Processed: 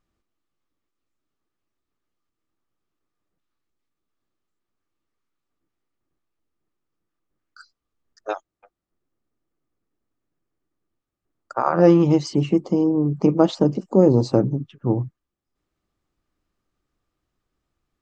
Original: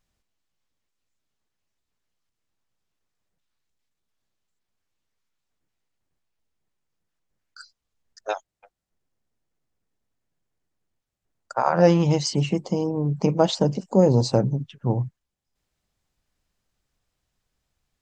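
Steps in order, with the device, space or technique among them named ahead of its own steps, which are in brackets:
inside a helmet (high-shelf EQ 3,700 Hz −8.5 dB; hollow resonant body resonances 320/1,200 Hz, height 10 dB, ringing for 25 ms)
level −1 dB

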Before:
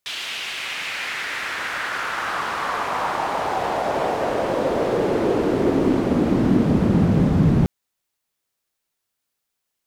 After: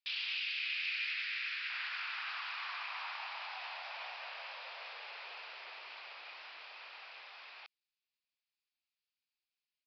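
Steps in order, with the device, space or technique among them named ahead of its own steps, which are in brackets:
0:00.38–0:01.70: inverse Chebyshev high-pass filter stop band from 220 Hz, stop band 80 dB
first difference
musical greeting card (downsampling to 11,025 Hz; high-pass filter 740 Hz 24 dB per octave; parametric band 2,500 Hz +9 dB 0.37 octaves)
level −4.5 dB

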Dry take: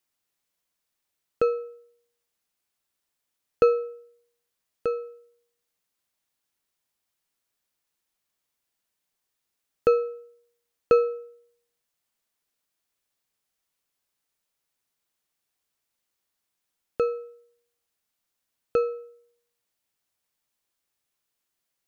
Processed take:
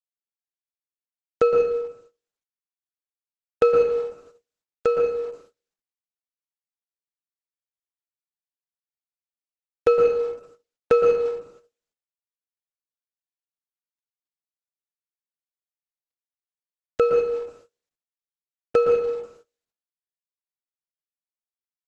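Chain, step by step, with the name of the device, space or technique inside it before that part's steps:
speakerphone in a meeting room (convolution reverb RT60 0.75 s, pre-delay 109 ms, DRR 1.5 dB; far-end echo of a speakerphone 100 ms, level −28 dB; automatic gain control gain up to 12 dB; noise gate −44 dBFS, range −32 dB; level −5.5 dB; Opus 12 kbit/s 48,000 Hz)

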